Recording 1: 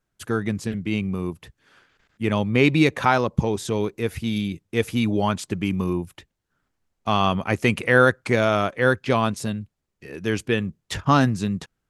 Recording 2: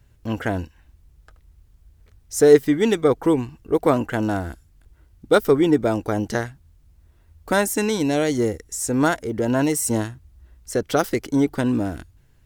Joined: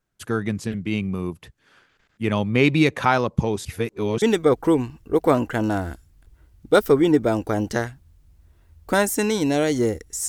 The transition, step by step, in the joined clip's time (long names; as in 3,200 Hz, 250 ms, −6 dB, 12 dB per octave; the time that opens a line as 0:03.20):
recording 1
0:03.65–0:04.22: reverse
0:04.22: continue with recording 2 from 0:02.81